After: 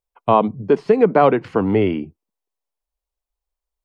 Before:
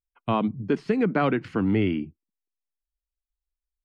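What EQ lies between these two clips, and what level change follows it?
flat-topped bell 660 Hz +9.5 dB
+3.0 dB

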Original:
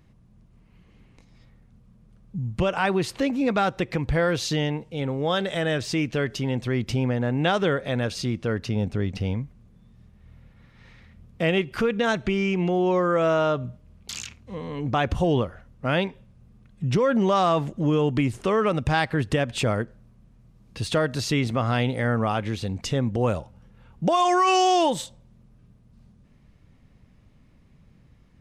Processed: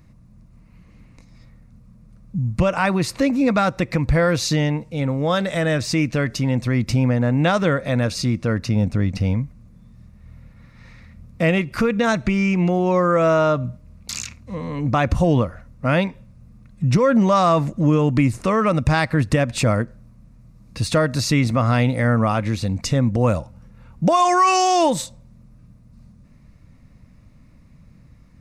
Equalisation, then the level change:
thirty-one-band graphic EQ 400 Hz −11 dB, 800 Hz −6 dB, 1,600 Hz −4 dB, 3,150 Hz −12 dB
+7.0 dB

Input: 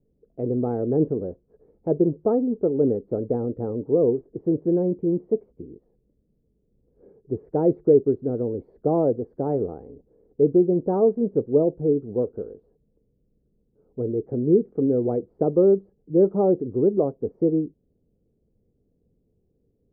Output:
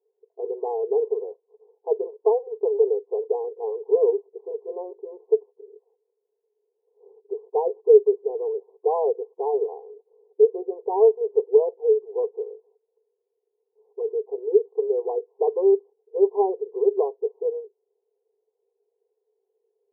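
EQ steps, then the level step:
linear-phase brick-wall band-pass 390–1,100 Hz
phaser with its sweep stopped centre 580 Hz, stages 6
+6.5 dB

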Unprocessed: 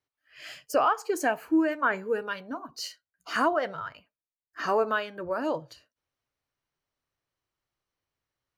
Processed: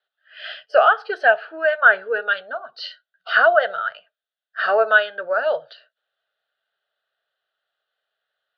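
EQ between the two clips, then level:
loudspeaker in its box 400–3,800 Hz, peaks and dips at 420 Hz +4 dB, 650 Hz +8 dB, 1,000 Hz +5 dB, 1,500 Hz +9 dB, 2,200 Hz +8 dB, 3,500 Hz +6 dB
high-shelf EQ 2,600 Hz +8 dB
phaser with its sweep stopped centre 1,500 Hz, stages 8
+4.5 dB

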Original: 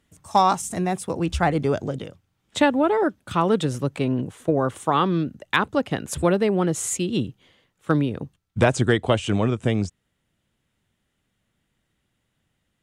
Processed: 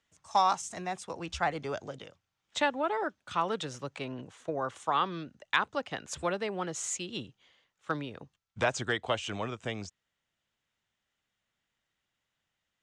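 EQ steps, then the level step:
three-way crossover with the lows and the highs turned down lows −12 dB, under 590 Hz, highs −23 dB, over 7,300 Hz
parametric band 6,400 Hz +5 dB 0.73 octaves
−6.0 dB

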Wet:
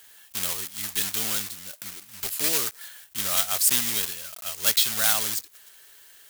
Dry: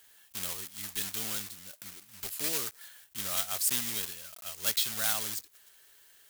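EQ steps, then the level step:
low-shelf EQ 390 Hz −3 dB
+8.0 dB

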